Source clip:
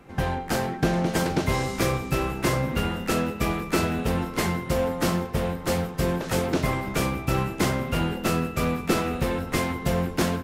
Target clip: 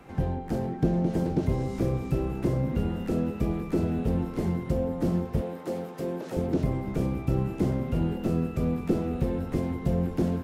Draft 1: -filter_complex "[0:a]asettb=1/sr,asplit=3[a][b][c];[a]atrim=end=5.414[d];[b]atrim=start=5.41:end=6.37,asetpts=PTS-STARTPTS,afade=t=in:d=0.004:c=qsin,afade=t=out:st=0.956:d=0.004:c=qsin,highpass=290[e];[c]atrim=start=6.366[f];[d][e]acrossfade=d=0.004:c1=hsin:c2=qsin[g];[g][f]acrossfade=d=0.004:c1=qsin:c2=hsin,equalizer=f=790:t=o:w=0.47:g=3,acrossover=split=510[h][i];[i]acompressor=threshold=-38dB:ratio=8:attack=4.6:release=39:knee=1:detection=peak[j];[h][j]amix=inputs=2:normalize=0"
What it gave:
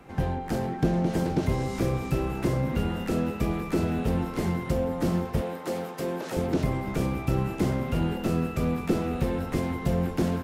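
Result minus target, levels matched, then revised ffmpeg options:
compressor: peak gain reduction -8 dB
-filter_complex "[0:a]asettb=1/sr,asplit=3[a][b][c];[a]atrim=end=5.414[d];[b]atrim=start=5.41:end=6.37,asetpts=PTS-STARTPTS,afade=t=in:d=0.004:c=qsin,afade=t=out:st=0.956:d=0.004:c=qsin,highpass=290[e];[c]atrim=start=6.366[f];[d][e]acrossfade=d=0.004:c1=hsin:c2=qsin[g];[g][f]acrossfade=d=0.004:c1=qsin:c2=hsin,equalizer=f=790:t=o:w=0.47:g=3,acrossover=split=510[h][i];[i]acompressor=threshold=-47dB:ratio=8:attack=4.6:release=39:knee=1:detection=peak[j];[h][j]amix=inputs=2:normalize=0"

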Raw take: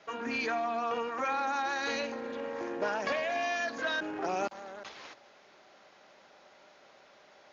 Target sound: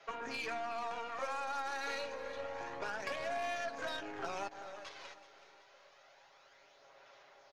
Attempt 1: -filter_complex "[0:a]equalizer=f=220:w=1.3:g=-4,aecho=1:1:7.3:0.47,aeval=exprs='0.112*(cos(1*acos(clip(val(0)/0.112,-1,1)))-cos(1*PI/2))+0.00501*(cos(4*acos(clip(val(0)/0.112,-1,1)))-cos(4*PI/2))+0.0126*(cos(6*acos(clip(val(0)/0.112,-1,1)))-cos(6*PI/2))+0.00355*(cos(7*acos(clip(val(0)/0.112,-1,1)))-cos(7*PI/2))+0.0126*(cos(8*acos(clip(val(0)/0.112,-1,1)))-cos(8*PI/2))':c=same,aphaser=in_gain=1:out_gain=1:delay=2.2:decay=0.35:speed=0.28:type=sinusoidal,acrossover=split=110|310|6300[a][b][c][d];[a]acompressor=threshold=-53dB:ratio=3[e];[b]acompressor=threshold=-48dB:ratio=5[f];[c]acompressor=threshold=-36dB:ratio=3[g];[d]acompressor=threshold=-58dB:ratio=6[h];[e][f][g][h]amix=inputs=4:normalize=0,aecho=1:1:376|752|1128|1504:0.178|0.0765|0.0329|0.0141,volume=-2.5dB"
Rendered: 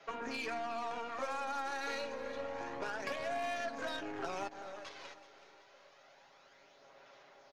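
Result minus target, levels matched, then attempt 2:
250 Hz band +4.5 dB
-filter_complex "[0:a]equalizer=f=220:w=1.3:g=-14.5,aecho=1:1:7.3:0.47,aeval=exprs='0.112*(cos(1*acos(clip(val(0)/0.112,-1,1)))-cos(1*PI/2))+0.00501*(cos(4*acos(clip(val(0)/0.112,-1,1)))-cos(4*PI/2))+0.0126*(cos(6*acos(clip(val(0)/0.112,-1,1)))-cos(6*PI/2))+0.00355*(cos(7*acos(clip(val(0)/0.112,-1,1)))-cos(7*PI/2))+0.0126*(cos(8*acos(clip(val(0)/0.112,-1,1)))-cos(8*PI/2))':c=same,aphaser=in_gain=1:out_gain=1:delay=2.2:decay=0.35:speed=0.28:type=sinusoidal,acrossover=split=110|310|6300[a][b][c][d];[a]acompressor=threshold=-53dB:ratio=3[e];[b]acompressor=threshold=-48dB:ratio=5[f];[c]acompressor=threshold=-36dB:ratio=3[g];[d]acompressor=threshold=-58dB:ratio=6[h];[e][f][g][h]amix=inputs=4:normalize=0,aecho=1:1:376|752|1128|1504:0.178|0.0765|0.0329|0.0141,volume=-2.5dB"

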